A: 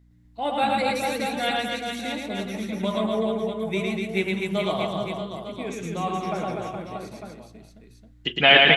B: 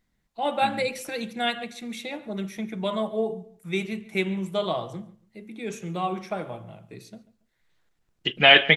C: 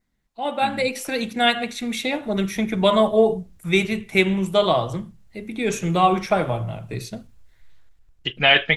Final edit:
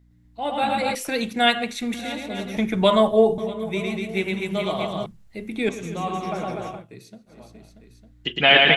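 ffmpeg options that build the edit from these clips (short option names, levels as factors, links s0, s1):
-filter_complex "[2:a]asplit=3[s0][s1][s2];[0:a]asplit=5[s3][s4][s5][s6][s7];[s3]atrim=end=0.952[s8];[s0]atrim=start=0.948:end=1.942[s9];[s4]atrim=start=1.938:end=2.572[s10];[s1]atrim=start=2.568:end=3.382[s11];[s5]atrim=start=3.378:end=5.062[s12];[s2]atrim=start=5.058:end=5.692[s13];[s6]atrim=start=5.688:end=6.87[s14];[1:a]atrim=start=6.71:end=7.42[s15];[s7]atrim=start=7.26[s16];[s8][s9]acrossfade=d=0.004:c1=hsin:c2=hsin[s17];[s17][s10]acrossfade=d=0.004:c1=hsin:c2=hsin[s18];[s18][s11]acrossfade=d=0.004:c1=hsin:c2=hsin[s19];[s19][s12]acrossfade=d=0.004:c1=hsin:c2=hsin[s20];[s20][s13]acrossfade=d=0.004:c1=hsin:c2=hsin[s21];[s21][s14]acrossfade=d=0.004:c1=hsin:c2=hsin[s22];[s22][s15]acrossfade=d=0.16:c1=tri:c2=tri[s23];[s23][s16]acrossfade=d=0.16:c1=tri:c2=tri"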